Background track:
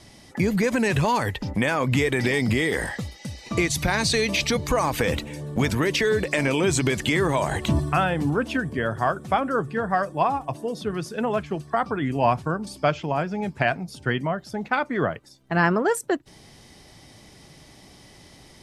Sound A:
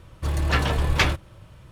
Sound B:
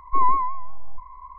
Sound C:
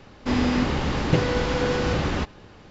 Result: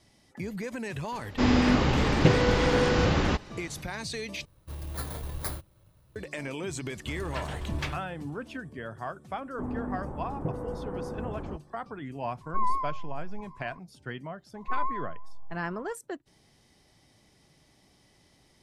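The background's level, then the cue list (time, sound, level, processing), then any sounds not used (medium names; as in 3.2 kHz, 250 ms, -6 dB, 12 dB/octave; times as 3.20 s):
background track -13.5 dB
1.12 s: add C
4.45 s: replace with A -14 dB + bit-reversed sample order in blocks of 16 samples
6.83 s: add A -14.5 dB
9.32 s: add C -12 dB + low-pass 1.1 kHz 24 dB/octave
12.41 s: add B -8.5 dB
14.55 s: add B -11.5 dB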